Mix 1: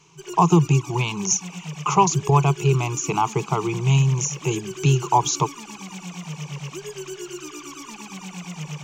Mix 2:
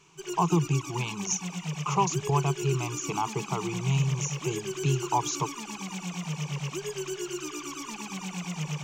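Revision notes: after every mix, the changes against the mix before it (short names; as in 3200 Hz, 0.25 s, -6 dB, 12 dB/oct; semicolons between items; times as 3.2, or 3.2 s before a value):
speech -8.5 dB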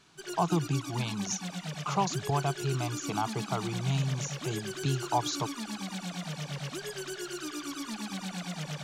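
master: remove ripple EQ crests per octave 0.74, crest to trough 12 dB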